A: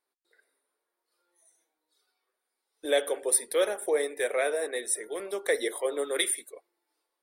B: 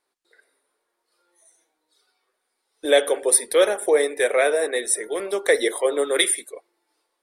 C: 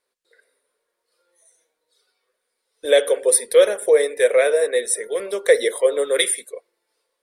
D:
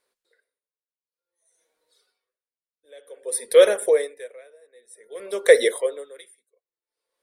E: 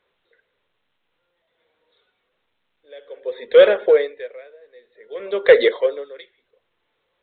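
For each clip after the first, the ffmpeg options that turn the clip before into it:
-af "lowpass=11k,volume=8.5dB"
-af "equalizer=f=315:t=o:w=0.33:g=-11,equalizer=f=500:t=o:w=0.33:g=8,equalizer=f=800:t=o:w=0.33:g=-9,equalizer=f=1.25k:t=o:w=0.33:g=-3"
-af "aeval=exprs='val(0)*pow(10,-36*(0.5-0.5*cos(2*PI*0.54*n/s))/20)':c=same,volume=1.5dB"
-af "acontrast=61,volume=-1dB" -ar 8000 -c:a pcm_alaw

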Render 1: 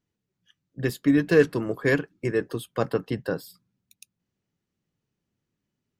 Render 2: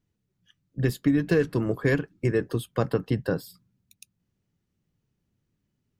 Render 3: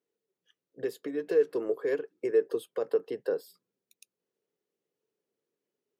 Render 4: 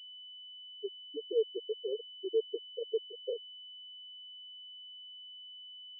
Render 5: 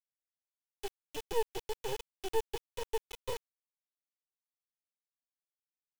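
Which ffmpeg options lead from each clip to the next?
-af "lowshelf=f=160:g=11,acompressor=threshold=-18dB:ratio=6"
-af "alimiter=limit=-17.5dB:level=0:latency=1:release=251,highpass=f=440:t=q:w=4.9,volume=-7dB"
-af "afftfilt=real='re*gte(hypot(re,im),0.251)':imag='im*gte(hypot(re,im),0.251)':win_size=1024:overlap=0.75,aeval=exprs='val(0)+0.00891*sin(2*PI*3000*n/s)':c=same,volume=-6dB"
-af "acrusher=bits=4:dc=4:mix=0:aa=0.000001,volume=2.5dB"

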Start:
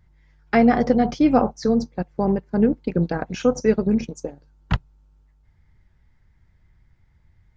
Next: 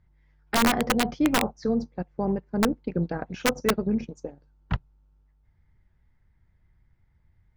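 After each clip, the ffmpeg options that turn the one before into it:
-af "aemphasis=mode=reproduction:type=50fm,aeval=exprs='(mod(2.51*val(0)+1,2)-1)/2.51':c=same,volume=-6dB"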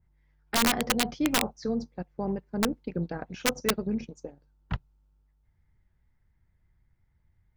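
-af "adynamicequalizer=threshold=0.01:dfrequency=2300:dqfactor=0.7:tfrequency=2300:tqfactor=0.7:attack=5:release=100:ratio=0.375:range=3.5:mode=boostabove:tftype=highshelf,volume=-4.5dB"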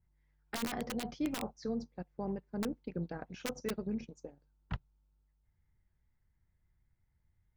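-af "alimiter=limit=-18.5dB:level=0:latency=1:release=10,volume=-7dB"

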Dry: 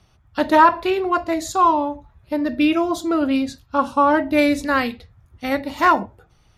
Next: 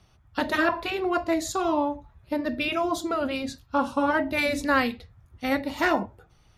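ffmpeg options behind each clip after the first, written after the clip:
-af "afftfilt=real='re*lt(hypot(re,im),1.12)':imag='im*lt(hypot(re,im),1.12)':win_size=1024:overlap=0.75,volume=-2.5dB"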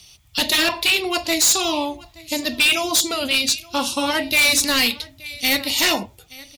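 -af "aecho=1:1:874:0.0708,aexciter=amount=12.2:drive=2.8:freq=2.3k,asoftclip=type=hard:threshold=-13.5dB,volume=1dB"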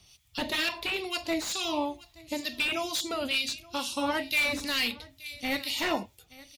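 -filter_complex "[0:a]acrossover=split=3600[a][b];[b]acompressor=threshold=-28dB:ratio=4:attack=1:release=60[c];[a][c]amix=inputs=2:normalize=0,acrossover=split=1800[d][e];[d]aeval=exprs='val(0)*(1-0.7/2+0.7/2*cos(2*PI*2.2*n/s))':c=same[f];[e]aeval=exprs='val(0)*(1-0.7/2-0.7/2*cos(2*PI*2.2*n/s))':c=same[g];[f][g]amix=inputs=2:normalize=0,volume=-5.5dB"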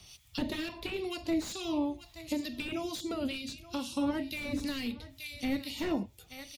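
-filter_complex "[0:a]acrossover=split=390[a][b];[b]acompressor=threshold=-45dB:ratio=6[c];[a][c]amix=inputs=2:normalize=0,volume=4.5dB"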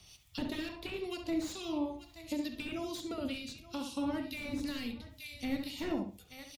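-filter_complex "[0:a]asplit=2[a][b];[b]adelay=68,lowpass=f=1.7k:p=1,volume=-4.5dB,asplit=2[c][d];[d]adelay=68,lowpass=f=1.7k:p=1,volume=0.25,asplit=2[e][f];[f]adelay=68,lowpass=f=1.7k:p=1,volume=0.25[g];[a][c][e][g]amix=inputs=4:normalize=0,volume=-4dB"

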